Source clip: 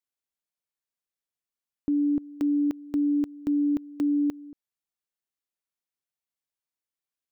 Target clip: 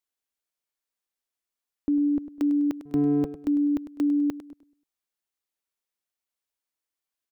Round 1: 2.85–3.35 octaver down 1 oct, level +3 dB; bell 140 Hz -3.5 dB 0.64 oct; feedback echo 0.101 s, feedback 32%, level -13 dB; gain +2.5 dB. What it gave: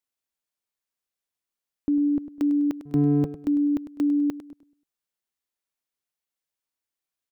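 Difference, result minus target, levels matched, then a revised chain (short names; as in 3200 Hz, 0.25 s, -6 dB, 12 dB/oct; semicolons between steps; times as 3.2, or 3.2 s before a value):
125 Hz band +7.5 dB
2.85–3.35 octaver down 1 oct, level +3 dB; bell 140 Hz -12.5 dB 0.64 oct; feedback echo 0.101 s, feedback 32%, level -13 dB; gain +2.5 dB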